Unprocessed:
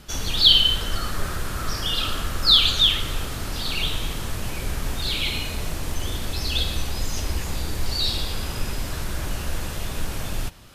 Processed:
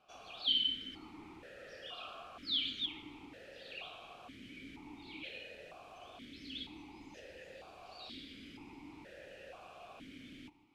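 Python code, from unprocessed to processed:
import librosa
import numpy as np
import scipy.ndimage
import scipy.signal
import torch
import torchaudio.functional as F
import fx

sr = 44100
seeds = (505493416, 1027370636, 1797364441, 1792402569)

y = x + 10.0 ** (-18.0 / 20.0) * np.pad(x, (int(152 * sr / 1000.0), 0))[:len(x)]
y = fx.vowel_held(y, sr, hz=2.1)
y = y * librosa.db_to_amplitude(-6.0)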